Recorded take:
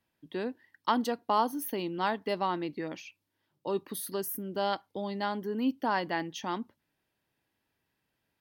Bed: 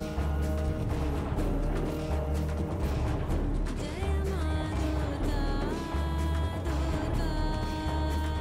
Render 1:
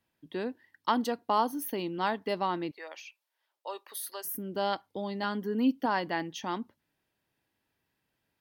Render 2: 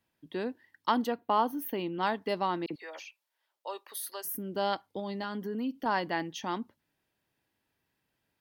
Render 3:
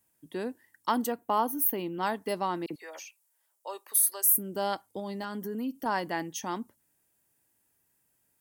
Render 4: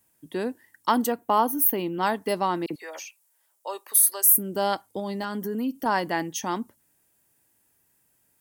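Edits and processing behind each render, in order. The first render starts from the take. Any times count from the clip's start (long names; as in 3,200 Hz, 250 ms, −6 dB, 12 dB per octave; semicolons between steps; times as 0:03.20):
0:02.71–0:04.25: high-pass filter 580 Hz 24 dB per octave; 0:05.23–0:05.86: comb filter 4.2 ms, depth 51%
0:01.05–0:02.03: flat-topped bell 6,800 Hz −8.5 dB; 0:02.66–0:03.06: all-pass dispersion lows, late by 44 ms, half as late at 2,800 Hz; 0:04.99–0:05.86: downward compressor 3 to 1, threshold −32 dBFS
high shelf with overshoot 5,800 Hz +13.5 dB, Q 1.5
level +5.5 dB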